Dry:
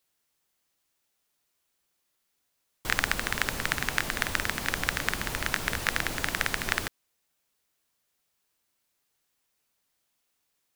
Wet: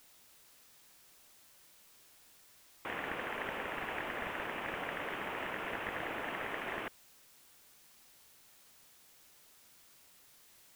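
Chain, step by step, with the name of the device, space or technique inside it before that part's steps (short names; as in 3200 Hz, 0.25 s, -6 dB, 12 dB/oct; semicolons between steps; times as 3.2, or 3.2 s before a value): army field radio (BPF 370–3200 Hz; CVSD 16 kbps; white noise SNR 18 dB)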